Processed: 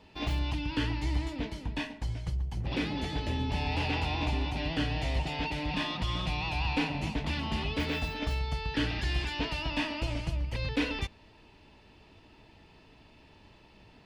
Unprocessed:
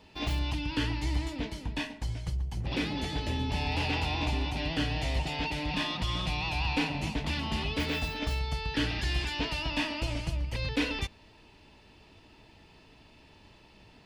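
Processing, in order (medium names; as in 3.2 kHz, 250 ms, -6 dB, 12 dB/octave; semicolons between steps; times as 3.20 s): treble shelf 4.8 kHz -6.5 dB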